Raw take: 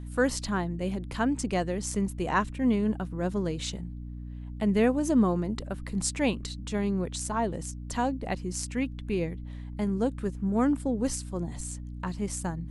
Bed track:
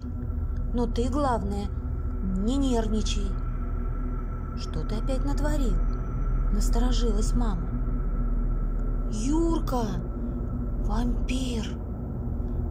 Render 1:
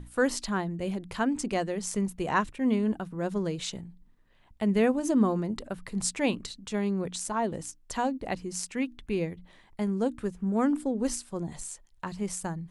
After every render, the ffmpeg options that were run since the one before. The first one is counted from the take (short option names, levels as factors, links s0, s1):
-af "bandreject=f=60:t=h:w=6,bandreject=f=120:t=h:w=6,bandreject=f=180:t=h:w=6,bandreject=f=240:t=h:w=6,bandreject=f=300:t=h:w=6"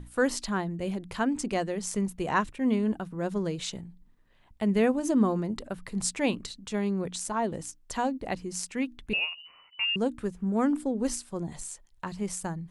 -filter_complex "[0:a]asettb=1/sr,asplit=3[s0][s1][s2];[s0]atrim=end=9.134[s3];[s1]atrim=start=9.13:end=9.96,asetpts=PTS-STARTPTS,afade=t=in:d=0.004:c=qsin,afade=t=out:st=0.826:d=0.004:c=qsin,lowpass=f=2600:t=q:w=0.5098,lowpass=f=2600:t=q:w=0.6013,lowpass=f=2600:t=q:w=0.9,lowpass=f=2600:t=q:w=2.563,afreqshift=-3000[s4];[s2]atrim=start=9.956[s5];[s3][s4]acrossfade=d=0.004:c1=hsin:c2=qsin[s6];[s6][s5]acrossfade=d=0.004:c1=qsin:c2=hsin"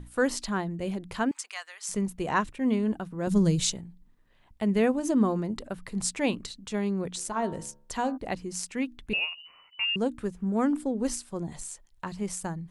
-filter_complex "[0:a]asettb=1/sr,asplit=3[s0][s1][s2];[s0]atrim=end=1.314[s3];[s1]atrim=start=1.31:end=1.89,asetpts=PTS-STARTPTS,afade=t=in:d=0.004:c=qsin,afade=t=out:st=0.576:d=0.004:c=qsin,highpass=f=1100:w=0.5412,highpass=f=1100:w=1.3066[s4];[s2]atrim=start=1.886[s5];[s3][s4]acrossfade=d=0.004:c1=hsin:c2=qsin[s6];[s6][s5]acrossfade=d=0.004:c1=qsin:c2=hsin,asettb=1/sr,asplit=3[s7][s8][s9];[s7]atrim=end=3.274[s10];[s8]atrim=start=3.27:end=3.73,asetpts=PTS-STARTPTS,afade=t=in:d=0.004:c=qsin,afade=t=out:st=0.456:d=0.004:c=qsin,bass=f=250:g=14,treble=f=4000:g=12[s11];[s9]atrim=start=3.726[s12];[s10][s11]acrossfade=d=0.004:c1=hsin:c2=qsin[s13];[s13][s12]acrossfade=d=0.004:c1=qsin:c2=hsin,asplit=3[s14][s15][s16];[s14]afade=t=out:st=7.16:d=0.02[s17];[s15]bandreject=f=70.92:t=h:w=4,bandreject=f=141.84:t=h:w=4,bandreject=f=212.76:t=h:w=4,bandreject=f=283.68:t=h:w=4,bandreject=f=354.6:t=h:w=4,bandreject=f=425.52:t=h:w=4,bandreject=f=496.44:t=h:w=4,bandreject=f=567.36:t=h:w=4,bandreject=f=638.28:t=h:w=4,bandreject=f=709.2:t=h:w=4,bandreject=f=780.12:t=h:w=4,bandreject=f=851.04:t=h:w=4,bandreject=f=921.96:t=h:w=4,bandreject=f=992.88:t=h:w=4,bandreject=f=1063.8:t=h:w=4,bandreject=f=1134.72:t=h:w=4,bandreject=f=1205.64:t=h:w=4,bandreject=f=1276.56:t=h:w=4,bandreject=f=1347.48:t=h:w=4,bandreject=f=1418.4:t=h:w=4,bandreject=f=1489.32:t=h:w=4,bandreject=f=1560.24:t=h:w=4,bandreject=f=1631.16:t=h:w=4,bandreject=f=1702.08:t=h:w=4,bandreject=f=1773:t=h:w=4,afade=t=in:st=7.16:d=0.02,afade=t=out:st=8.16:d=0.02[s18];[s16]afade=t=in:st=8.16:d=0.02[s19];[s17][s18][s19]amix=inputs=3:normalize=0"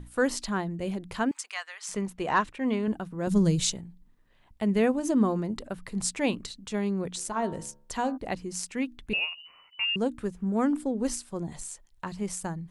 -filter_complex "[0:a]asettb=1/sr,asplit=3[s0][s1][s2];[s0]atrim=end=1.524[s3];[s1]atrim=start=1.52:end=2.88,asetpts=PTS-STARTPTS,afade=t=in:d=0.004:c=qsin,afade=t=out:st=1.356:d=0.004:c=qsin,asplit=2[s4][s5];[s5]highpass=f=720:p=1,volume=2.82,asoftclip=type=tanh:threshold=0.266[s6];[s4][s6]amix=inputs=2:normalize=0,lowpass=f=3000:p=1,volume=0.501[s7];[s2]atrim=start=2.876[s8];[s3][s7]acrossfade=d=0.004:c1=hsin:c2=qsin[s9];[s9][s8]acrossfade=d=0.004:c1=qsin:c2=hsin"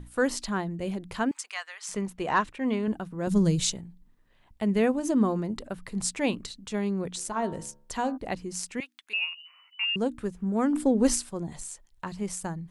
-filter_complex "[0:a]asettb=1/sr,asplit=3[s0][s1][s2];[s0]atrim=end=8.804[s3];[s1]atrim=start=8.8:end=9.83,asetpts=PTS-STARTPTS,afade=t=in:d=0.004:c=qsin,afade=t=out:st=1.026:d=0.004:c=qsin,highpass=1200[s4];[s2]atrim=start=9.826[s5];[s3][s4]acrossfade=d=0.004:c1=hsin:c2=qsin[s6];[s6][s5]acrossfade=d=0.004:c1=qsin:c2=hsin,asplit=3[s7][s8][s9];[s7]afade=t=out:st=10.74:d=0.02[s10];[s8]acontrast=73,afade=t=in:st=10.74:d=0.02,afade=t=out:st=11.29:d=0.02[s11];[s9]afade=t=in:st=11.29:d=0.02[s12];[s10][s11][s12]amix=inputs=3:normalize=0"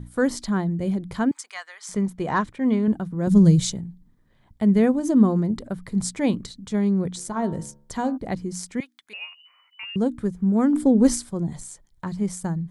-af "equalizer=f=140:t=o:w=2.4:g=10,bandreject=f=2700:w=5.3"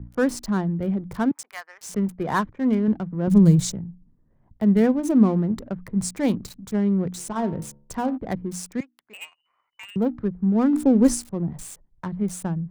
-filter_complex "[0:a]acrossover=split=160|3500[s0][s1][s2];[s1]adynamicsmooth=sensitivity=7.5:basefreq=910[s3];[s2]acrusher=bits=6:mix=0:aa=0.000001[s4];[s0][s3][s4]amix=inputs=3:normalize=0"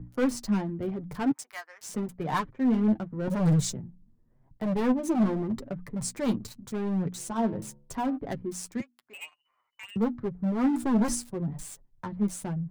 -af "volume=8.41,asoftclip=hard,volume=0.119,flanger=delay=6.5:depth=3:regen=18:speed=0.86:shape=triangular"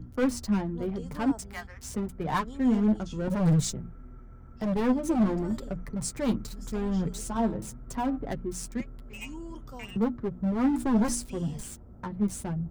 -filter_complex "[1:a]volume=0.15[s0];[0:a][s0]amix=inputs=2:normalize=0"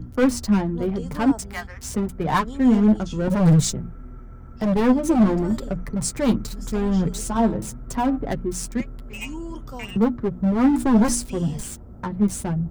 -af "volume=2.37"